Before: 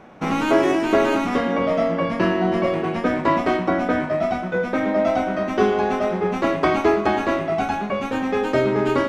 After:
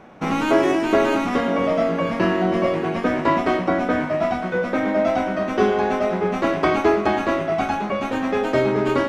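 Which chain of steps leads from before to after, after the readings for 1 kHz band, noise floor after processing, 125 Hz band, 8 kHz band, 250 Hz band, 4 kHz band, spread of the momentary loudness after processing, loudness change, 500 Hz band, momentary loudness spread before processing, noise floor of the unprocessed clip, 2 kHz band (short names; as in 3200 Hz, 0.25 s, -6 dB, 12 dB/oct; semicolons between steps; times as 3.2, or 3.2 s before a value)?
0.0 dB, -27 dBFS, 0.0 dB, n/a, 0.0 dB, +0.5 dB, 4 LU, 0.0 dB, 0.0 dB, 5 LU, -28 dBFS, +0.5 dB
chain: on a send: thinning echo 0.955 s, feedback 69%, level -13 dB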